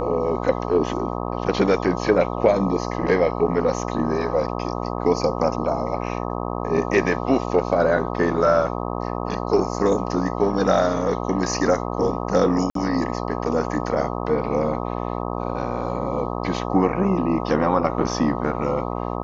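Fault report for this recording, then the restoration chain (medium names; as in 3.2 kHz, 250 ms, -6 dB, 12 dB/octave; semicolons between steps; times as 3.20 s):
buzz 60 Hz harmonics 21 -27 dBFS
12.70–12.75 s: dropout 53 ms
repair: de-hum 60 Hz, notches 21; interpolate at 12.70 s, 53 ms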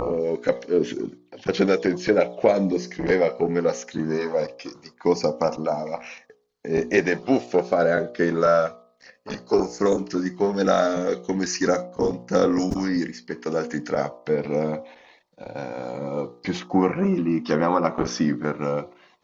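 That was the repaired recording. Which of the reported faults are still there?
nothing left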